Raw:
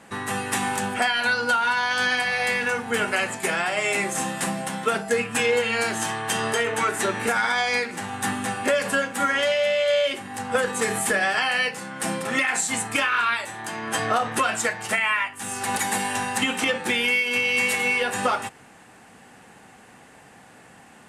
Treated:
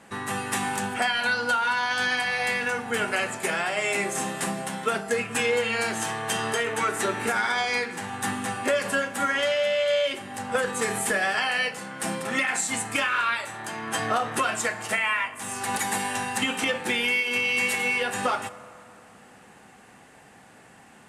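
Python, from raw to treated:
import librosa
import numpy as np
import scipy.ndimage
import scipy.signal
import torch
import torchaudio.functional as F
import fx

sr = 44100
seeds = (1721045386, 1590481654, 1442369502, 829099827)

y = fx.rev_fdn(x, sr, rt60_s=2.9, lf_ratio=1.0, hf_ratio=0.5, size_ms=15.0, drr_db=14.0)
y = y * librosa.db_to_amplitude(-2.5)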